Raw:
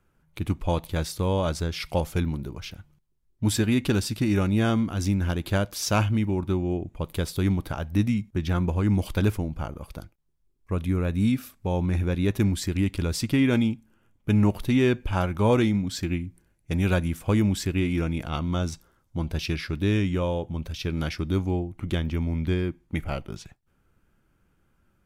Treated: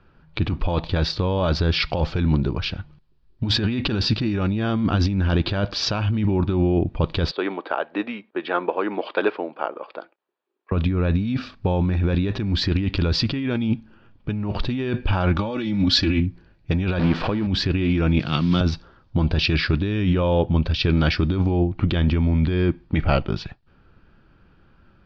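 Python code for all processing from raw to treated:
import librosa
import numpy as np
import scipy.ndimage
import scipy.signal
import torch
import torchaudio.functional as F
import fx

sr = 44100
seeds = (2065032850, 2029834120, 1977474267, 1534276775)

y = fx.chain(x, sr, fx.highpass(hz=400.0, slope=24),
    fx.air_absorb(metres=380.0), at=(7.31, 10.72))
y = fx.chain(y, sr, fx.high_shelf(hz=3300.0, db=8.5),
    fx.comb(ms=3.5, depth=0.74), at=(15.36, 16.2))
y = fx.chain(y, sr, fx.zero_step(step_db=-30.0),
    fx.lowpass(hz=2800.0, slope=6),
    fx.peak_eq(hz=69.0, db=-15.0, octaves=1.2), at=(16.99, 17.47))
y = fx.chain(y, sr, fx.block_float(bits=5),
    fx.highpass(hz=120.0, slope=24),
    fx.peak_eq(hz=730.0, db=-11.0, octaves=2.0), at=(18.19, 18.61))
y = scipy.signal.sosfilt(scipy.signal.ellip(4, 1.0, 60, 4700.0, 'lowpass', fs=sr, output='sos'), y)
y = fx.notch(y, sr, hz=2100.0, q=10.0)
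y = fx.over_compress(y, sr, threshold_db=-29.0, ratio=-1.0)
y = F.gain(torch.from_numpy(y), 9.0).numpy()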